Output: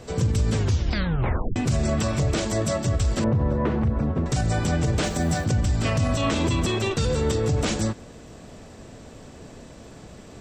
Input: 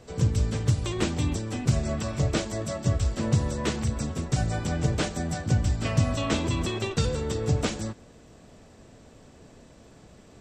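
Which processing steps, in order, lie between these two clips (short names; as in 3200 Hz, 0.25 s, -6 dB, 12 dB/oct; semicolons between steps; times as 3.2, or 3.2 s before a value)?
3.24–4.26 LPF 1300 Hz 12 dB/oct; limiter -22.5 dBFS, peak gain reduction 11.5 dB; 0.55 tape stop 1.01 s; 5.03–5.44 added noise pink -57 dBFS; gain +8 dB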